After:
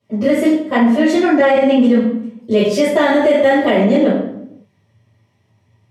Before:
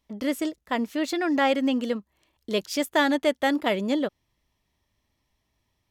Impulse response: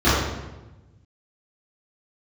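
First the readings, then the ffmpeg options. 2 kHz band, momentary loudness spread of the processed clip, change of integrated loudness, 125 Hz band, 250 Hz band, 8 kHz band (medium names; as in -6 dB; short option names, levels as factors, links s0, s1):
+8.5 dB, 6 LU, +12.0 dB, no reading, +13.0 dB, +4.5 dB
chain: -filter_complex "[1:a]atrim=start_sample=2205,asetrate=74970,aresample=44100[s0];[0:a][s0]afir=irnorm=-1:irlink=0,alimiter=level_in=0.596:limit=0.891:release=50:level=0:latency=1,volume=0.668"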